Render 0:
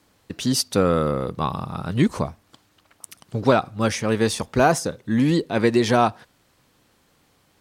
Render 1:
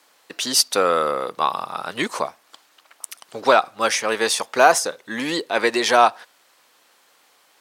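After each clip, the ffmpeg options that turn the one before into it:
-af "highpass=640,volume=2.11"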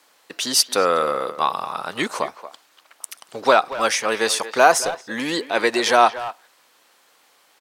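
-filter_complex "[0:a]asplit=2[s0][s1];[s1]adelay=230,highpass=300,lowpass=3400,asoftclip=type=hard:threshold=0.335,volume=0.224[s2];[s0][s2]amix=inputs=2:normalize=0"

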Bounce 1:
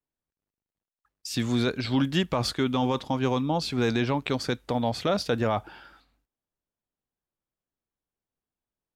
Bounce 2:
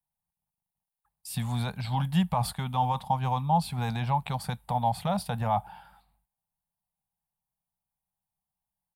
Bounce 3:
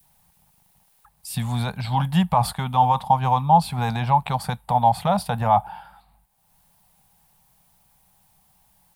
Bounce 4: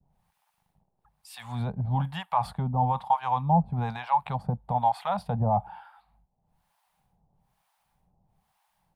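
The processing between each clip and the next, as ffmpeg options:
-af "firequalizer=gain_entry='entry(100,0);entry(180,5);entry(300,-26);entry(810,8);entry(1300,-8);entry(3900,-7);entry(6200,-14);entry(9100,6)':delay=0.05:min_phase=1"
-af "acompressor=mode=upward:threshold=0.00501:ratio=2.5,adynamicequalizer=threshold=0.0141:dfrequency=920:dqfactor=0.88:tfrequency=920:tqfactor=0.88:attack=5:release=100:ratio=0.375:range=2.5:mode=boostabove:tftype=bell,volume=1.78"
-filter_complex "[0:a]lowpass=f=1600:p=1,acrossover=split=740[s0][s1];[s0]aeval=exprs='val(0)*(1-1/2+1/2*cos(2*PI*1.1*n/s))':c=same[s2];[s1]aeval=exprs='val(0)*(1-1/2-1/2*cos(2*PI*1.1*n/s))':c=same[s3];[s2][s3]amix=inputs=2:normalize=0"

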